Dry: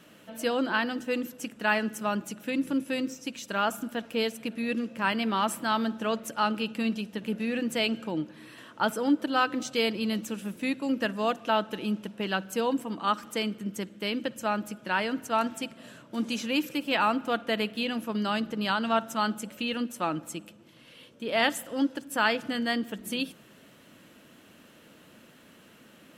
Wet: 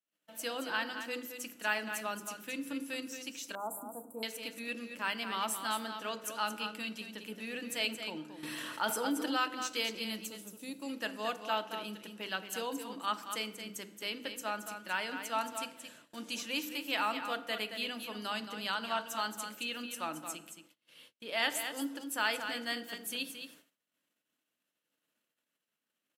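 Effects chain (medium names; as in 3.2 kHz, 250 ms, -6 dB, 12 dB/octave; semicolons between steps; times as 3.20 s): high-pass 100 Hz; tilt EQ +2.5 dB/octave; hum notches 50/100/150/200/250/300/350/400/450/500 Hz; 10.26–10.82 s: peaking EQ 1.9 kHz -14.5 dB 1.6 oct; delay 223 ms -8.5 dB; FDN reverb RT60 0.97 s, low-frequency decay 1.1×, high-frequency decay 0.55×, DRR 12 dB; gate -49 dBFS, range -37 dB; 3.55–4.23 s: elliptic band-stop 990–8500 Hz, stop band 40 dB; 8.43–9.45 s: level flattener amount 50%; trim -8.5 dB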